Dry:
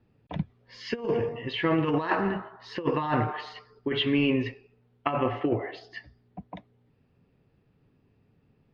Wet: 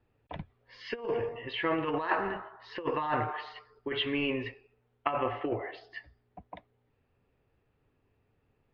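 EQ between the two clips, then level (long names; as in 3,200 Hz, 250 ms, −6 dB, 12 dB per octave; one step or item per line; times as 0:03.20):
high-frequency loss of the air 190 metres
parametric band 180 Hz −13.5 dB 1.7 octaves
0.0 dB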